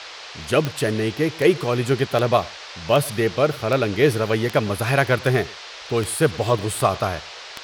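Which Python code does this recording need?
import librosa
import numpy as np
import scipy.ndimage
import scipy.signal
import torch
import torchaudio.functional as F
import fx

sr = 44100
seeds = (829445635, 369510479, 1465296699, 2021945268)

y = fx.fix_declick_ar(x, sr, threshold=10.0)
y = fx.noise_reduce(y, sr, print_start_s=0.0, print_end_s=0.5, reduce_db=27.0)
y = fx.fix_echo_inverse(y, sr, delay_ms=106, level_db=-23.5)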